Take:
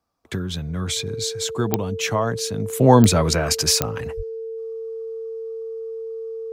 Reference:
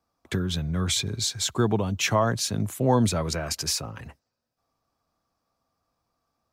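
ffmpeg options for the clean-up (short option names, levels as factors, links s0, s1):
-filter_complex "[0:a]adeclick=t=4,bandreject=f=450:w=30,asplit=3[s0][s1][s2];[s0]afade=t=out:st=4.16:d=0.02[s3];[s1]highpass=f=140:w=0.5412,highpass=f=140:w=1.3066,afade=t=in:st=4.16:d=0.02,afade=t=out:st=4.28:d=0.02[s4];[s2]afade=t=in:st=4.28:d=0.02[s5];[s3][s4][s5]amix=inputs=3:normalize=0,asetnsamples=n=441:p=0,asendcmd='2.73 volume volume -8.5dB',volume=1"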